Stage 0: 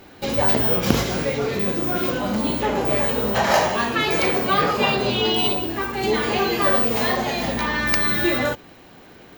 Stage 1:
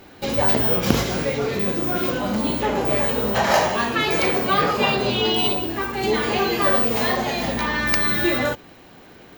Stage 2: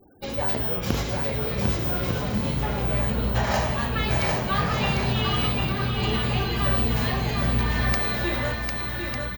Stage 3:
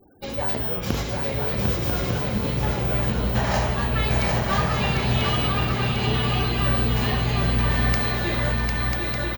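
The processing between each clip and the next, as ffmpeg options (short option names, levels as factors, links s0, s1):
-af anull
-af "afftfilt=real='re*gte(hypot(re,im),0.0112)':imag='im*gte(hypot(re,im),0.0112)':win_size=1024:overlap=0.75,aecho=1:1:750|1200|1470|1632|1729:0.631|0.398|0.251|0.158|0.1,asubboost=boost=9.5:cutoff=120,volume=0.447"
-af "aecho=1:1:992:0.596"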